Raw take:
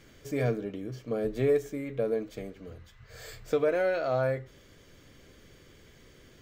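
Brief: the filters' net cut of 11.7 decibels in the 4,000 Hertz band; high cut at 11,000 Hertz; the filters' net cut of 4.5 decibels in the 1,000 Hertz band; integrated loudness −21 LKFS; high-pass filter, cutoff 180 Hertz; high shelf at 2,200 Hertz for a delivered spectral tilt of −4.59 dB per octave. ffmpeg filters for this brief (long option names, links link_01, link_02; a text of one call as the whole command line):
ffmpeg -i in.wav -af "highpass=180,lowpass=11000,equalizer=frequency=1000:width_type=o:gain=-5.5,highshelf=frequency=2200:gain=-7,equalizer=frequency=4000:width_type=o:gain=-8,volume=11dB" out.wav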